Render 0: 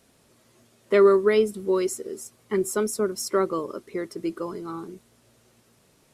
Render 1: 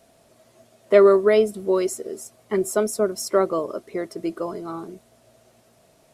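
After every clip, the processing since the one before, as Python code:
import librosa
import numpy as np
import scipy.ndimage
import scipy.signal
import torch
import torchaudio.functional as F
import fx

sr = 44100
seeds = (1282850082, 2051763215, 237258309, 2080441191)

y = fx.peak_eq(x, sr, hz=660.0, db=14.5, octaves=0.34)
y = y * 10.0 ** (1.0 / 20.0)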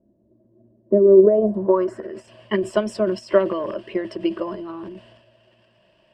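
y = fx.transient(x, sr, attack_db=8, sustain_db=12)
y = fx.filter_sweep_lowpass(y, sr, from_hz=300.0, to_hz=2900.0, start_s=0.98, end_s=2.3, q=2.7)
y = fx.ripple_eq(y, sr, per_octave=1.3, db=11)
y = y * 10.0 ** (-6.0 / 20.0)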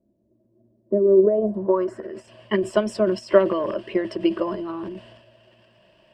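y = fx.rider(x, sr, range_db=4, speed_s=2.0)
y = y * 10.0 ** (-1.5 / 20.0)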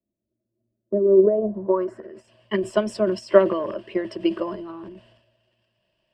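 y = fx.band_widen(x, sr, depth_pct=40)
y = y * 10.0 ** (-1.5 / 20.0)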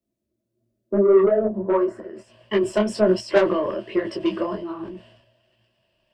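y = 10.0 ** (-14.0 / 20.0) * np.tanh(x / 10.0 ** (-14.0 / 20.0))
y = fx.detune_double(y, sr, cents=43)
y = y * 10.0 ** (7.5 / 20.0)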